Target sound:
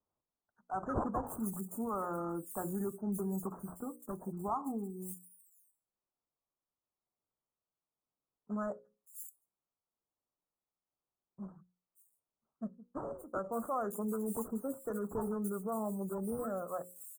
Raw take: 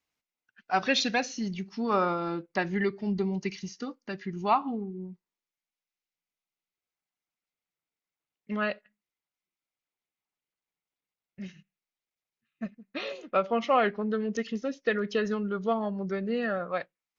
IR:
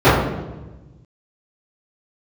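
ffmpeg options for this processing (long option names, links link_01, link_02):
-filter_complex "[0:a]bandreject=frequency=60:width_type=h:width=6,bandreject=frequency=120:width_type=h:width=6,bandreject=frequency=180:width_type=h:width=6,bandreject=frequency=240:width_type=h:width=6,bandreject=frequency=300:width_type=h:width=6,bandreject=frequency=360:width_type=h:width=6,bandreject=frequency=420:width_type=h:width=6,bandreject=frequency=480:width_type=h:width=6,bandreject=frequency=540:width_type=h:width=6,acrossover=split=120|1300[link_01][link_02][link_03];[link_02]alimiter=level_in=1.5dB:limit=-24dB:level=0:latency=1:release=55,volume=-1.5dB[link_04];[link_01][link_04][link_03]amix=inputs=3:normalize=0,acrusher=samples=13:mix=1:aa=0.000001:lfo=1:lforange=7.8:lforate=1,asuperstop=centerf=3300:order=12:qfactor=0.52,acrossover=split=5000[link_05][link_06];[link_06]adelay=570[link_07];[link_05][link_07]amix=inputs=2:normalize=0,volume=-4.5dB"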